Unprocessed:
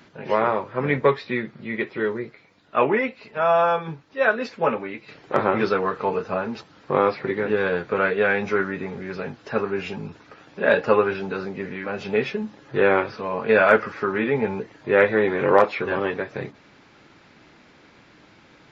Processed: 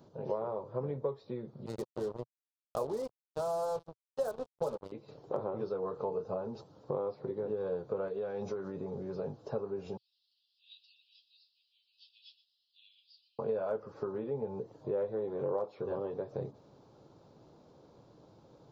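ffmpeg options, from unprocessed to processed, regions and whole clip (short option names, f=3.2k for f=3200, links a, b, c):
-filter_complex "[0:a]asettb=1/sr,asplit=3[a][b][c];[a]atrim=end=1.664[d];[b]atrim=start=1.66:end=4.92,asetpts=PTS-STARTPTS,afade=t=in:d=0.004:c=qsin,afade=t=out:st=3.256:d=0.004:c=qsin,acrossover=split=2700[e][f];[f]acompressor=threshold=-52dB:ratio=4:attack=1:release=60[g];[e][g]amix=inputs=2:normalize=0,acrusher=bits=3:mix=0:aa=0.5[h];[c]atrim=start=4.916[i];[d][h]acrossfade=d=0.004:c1=hsin:c2=qsin[j];[j][i]acrossfade=d=0.004:c1=qsin:c2=hsin,asettb=1/sr,asplit=3[k][l][m];[k]atrim=end=8.084[n];[l]atrim=start=8.08:end=8.75,asetpts=PTS-STARTPTS,afade=t=in:d=0.004:c=qsin,afade=t=out:st=0.666:d=0.004:c=qsin,highshelf=f=3.1k:g=7.5,acompressor=threshold=-24dB:ratio=6:attack=3.2:release=140:knee=1:detection=peak[o];[m]atrim=start=8.746[p];[n][o]acrossfade=d=0.004:c1=hsin:c2=qsin[q];[q][p]acrossfade=d=0.004:c1=qsin:c2=hsin,asettb=1/sr,asplit=3[r][s][t];[r]atrim=end=9.974[u];[s]atrim=start=9.97:end=13.39,asetpts=PTS-STARTPTS,afade=t=in:d=0.004:c=qsin,afade=t=out:st=3.416:d=0.004:c=qsin,asuperpass=centerf=3800:order=12:qfactor=1.6,aecho=1:1:120:0.188,atrim=end_sample=150822[v];[t]atrim=start=13.386[w];[u][v]acrossfade=d=0.004:c1=hsin:c2=qsin[x];[x][w]acrossfade=d=0.004:c1=qsin:c2=hsin,equalizer=f=2.4k:w=0.51:g=-13,acompressor=threshold=-31dB:ratio=6,equalizer=f=125:t=o:w=1:g=7,equalizer=f=250:t=o:w=1:g=-3,equalizer=f=500:t=o:w=1:g=9,equalizer=f=1k:t=o:w=1:g=6,equalizer=f=2k:t=o:w=1:g=-12,equalizer=f=4k:t=o:w=1:g=5,volume=-8dB"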